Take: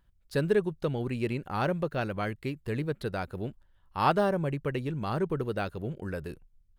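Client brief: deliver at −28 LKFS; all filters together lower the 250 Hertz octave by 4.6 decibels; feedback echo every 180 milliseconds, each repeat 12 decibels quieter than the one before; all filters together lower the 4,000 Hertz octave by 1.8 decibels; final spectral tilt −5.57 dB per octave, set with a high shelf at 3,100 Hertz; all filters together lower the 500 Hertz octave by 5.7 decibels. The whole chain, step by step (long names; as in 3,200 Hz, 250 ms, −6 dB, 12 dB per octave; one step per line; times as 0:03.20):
parametric band 250 Hz −5.5 dB
parametric band 500 Hz −5.5 dB
high-shelf EQ 3,100 Hz +3 dB
parametric band 4,000 Hz −4.5 dB
repeating echo 180 ms, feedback 25%, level −12 dB
level +6.5 dB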